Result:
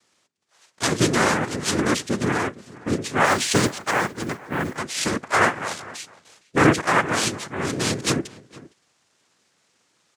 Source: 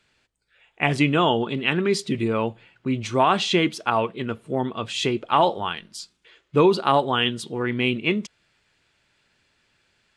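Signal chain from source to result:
cochlear-implant simulation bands 3
slap from a distant wall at 79 metres, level −20 dB
0:03.25–0:04.77: noise that follows the level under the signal 26 dB

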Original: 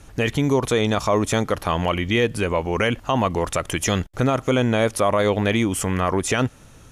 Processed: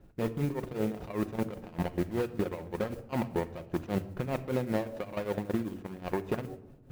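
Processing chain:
running median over 41 samples
low-pass filter 3,800 Hz 12 dB per octave
low-shelf EQ 130 Hz −7.5 dB
hum removal 93.95 Hz, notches 8
reversed playback
upward compression, threshold −36 dBFS
reversed playback
brickwall limiter −19 dBFS, peak gain reduction 7.5 dB
output level in coarse steps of 14 dB
noise that follows the level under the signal 25 dB
shaped tremolo triangle 5.1 Hz, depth 90%
rectangular room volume 3,700 cubic metres, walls furnished, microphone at 0.94 metres
level +1.5 dB

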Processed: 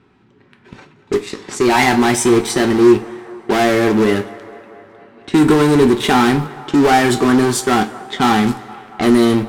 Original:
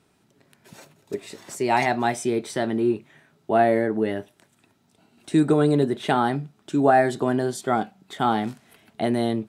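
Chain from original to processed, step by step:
mu-law and A-law mismatch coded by mu
in parallel at −3.5 dB: fuzz pedal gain 30 dB, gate −36 dBFS
on the sum: parametric band 640 Hz −12 dB 0.38 octaves
low-pass that shuts in the quiet parts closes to 2,400 Hz, open at −16.5 dBFS
on a send: delay with a band-pass on its return 231 ms, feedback 71%, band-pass 930 Hz, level −18 dB
on the sum: coupled-rooms reverb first 0.27 s, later 2.1 s, from −20 dB, DRR 6.5 dB
level +2.5 dB

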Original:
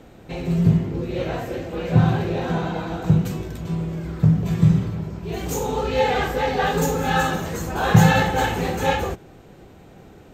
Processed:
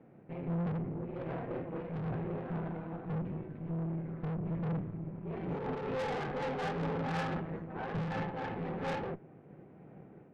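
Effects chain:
Chebyshev band-pass filter 140–2,300 Hz, order 3
spectral tilt −2.5 dB per octave
automatic gain control gain up to 3.5 dB
tube saturation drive 23 dB, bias 0.75
amplitude modulation by smooth noise, depth 50%
level −8 dB

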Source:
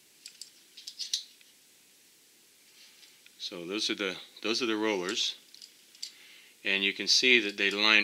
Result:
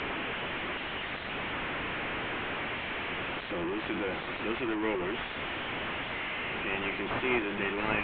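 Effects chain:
linear delta modulator 16 kbit/s, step −23.5 dBFS
high-frequency loss of the air 200 metres
mains-hum notches 50/100/150/200 Hz
level −2 dB

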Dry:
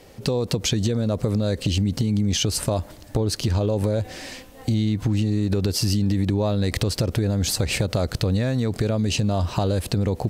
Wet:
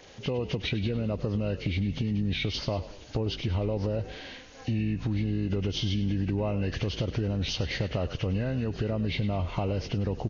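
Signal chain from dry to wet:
hearing-aid frequency compression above 1,300 Hz 1.5 to 1
echo with shifted repeats 101 ms, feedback 46%, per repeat −54 Hz, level −14 dB
one half of a high-frequency compander encoder only
level −7 dB

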